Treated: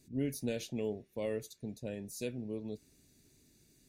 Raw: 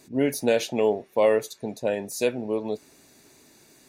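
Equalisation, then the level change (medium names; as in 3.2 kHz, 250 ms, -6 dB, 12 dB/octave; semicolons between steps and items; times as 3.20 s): amplifier tone stack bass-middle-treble 10-0-1; +9.0 dB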